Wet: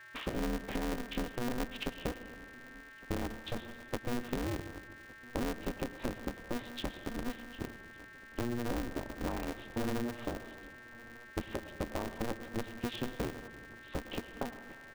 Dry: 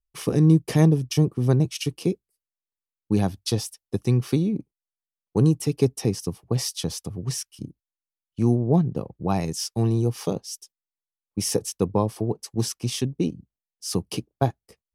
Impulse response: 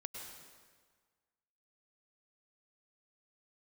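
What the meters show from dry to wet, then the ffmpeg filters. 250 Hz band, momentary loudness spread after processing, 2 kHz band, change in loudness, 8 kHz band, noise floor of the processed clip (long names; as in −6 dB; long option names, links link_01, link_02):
−14.0 dB, 13 LU, +0.5 dB, −15.0 dB, −19.0 dB, −53 dBFS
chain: -filter_complex "[0:a]alimiter=limit=-14.5dB:level=0:latency=1:release=346,acompressor=threshold=-40dB:ratio=3,aeval=exprs='val(0)+0.00224*sin(2*PI*1700*n/s)':channel_layout=same,asplit=2[link_01][link_02];[link_02]adelay=1161,lowpass=frequency=2000:poles=1,volume=-21.5dB,asplit=2[link_03][link_04];[link_04]adelay=1161,lowpass=frequency=2000:poles=1,volume=0.54,asplit=2[link_05][link_06];[link_06]adelay=1161,lowpass=frequency=2000:poles=1,volume=0.54,asplit=2[link_07][link_08];[link_08]adelay=1161,lowpass=frequency=2000:poles=1,volume=0.54[link_09];[link_01][link_03][link_05][link_07][link_09]amix=inputs=5:normalize=0,asplit=2[link_10][link_11];[1:a]atrim=start_sample=2205[link_12];[link_11][link_12]afir=irnorm=-1:irlink=0,volume=-1.5dB[link_13];[link_10][link_13]amix=inputs=2:normalize=0,aresample=8000,aresample=44100,aeval=exprs='val(0)*sgn(sin(2*PI*120*n/s))':channel_layout=same,volume=-1dB"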